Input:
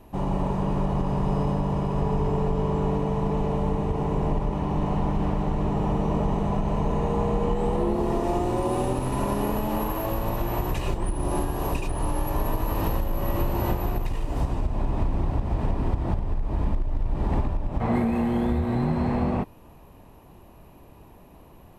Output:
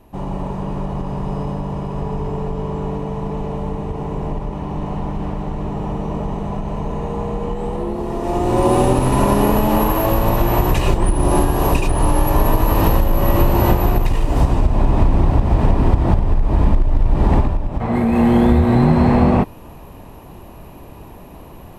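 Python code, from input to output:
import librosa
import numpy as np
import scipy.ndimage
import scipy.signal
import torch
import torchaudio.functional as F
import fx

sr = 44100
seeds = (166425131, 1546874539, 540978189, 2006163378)

y = fx.gain(x, sr, db=fx.line((8.13, 1.0), (8.64, 11.0), (17.29, 11.0), (17.88, 3.5), (18.26, 11.5)))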